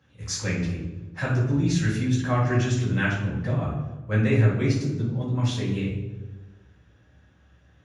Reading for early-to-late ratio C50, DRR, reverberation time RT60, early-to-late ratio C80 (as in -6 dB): 3.0 dB, -7.0 dB, 1.2 s, 6.0 dB